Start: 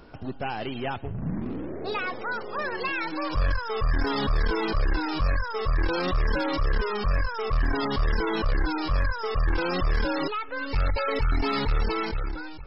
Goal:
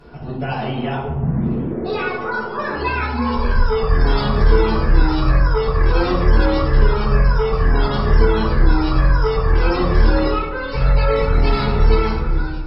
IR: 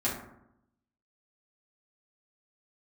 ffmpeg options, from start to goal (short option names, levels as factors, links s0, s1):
-filter_complex "[0:a]asettb=1/sr,asplit=3[s0][s1][s2];[s0]atrim=end=2.694[s3];[s1]atrim=start=2.69:end=3.55,asetpts=PTS-STARTPTS,afade=t=in:d=0.004:c=qsin,afade=t=out:st=0.856:d=0.004:c=qsin,afreqshift=-73[s4];[s2]atrim=start=3.546[s5];[s3][s4]acrossfade=d=0.004:c1=hsin:c2=qsin[s6];[s6][s5]acrossfade=d=0.004:c1=qsin:c2=hsin[s7];[1:a]atrim=start_sample=2205,asetrate=26901,aresample=44100[s8];[s7][s8]afir=irnorm=-1:irlink=0,volume=0.668"